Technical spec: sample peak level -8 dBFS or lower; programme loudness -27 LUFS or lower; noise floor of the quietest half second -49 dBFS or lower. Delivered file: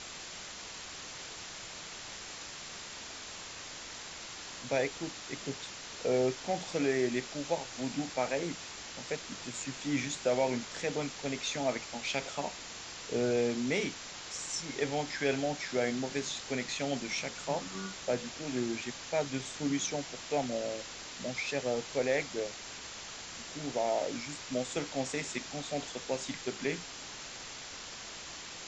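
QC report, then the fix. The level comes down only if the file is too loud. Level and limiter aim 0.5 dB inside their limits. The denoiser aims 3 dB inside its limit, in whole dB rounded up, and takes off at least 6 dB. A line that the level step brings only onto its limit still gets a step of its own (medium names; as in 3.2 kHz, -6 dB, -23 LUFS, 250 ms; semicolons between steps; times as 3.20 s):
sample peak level -17.0 dBFS: pass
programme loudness -35.5 LUFS: pass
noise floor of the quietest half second -45 dBFS: fail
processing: noise reduction 7 dB, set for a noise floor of -45 dBFS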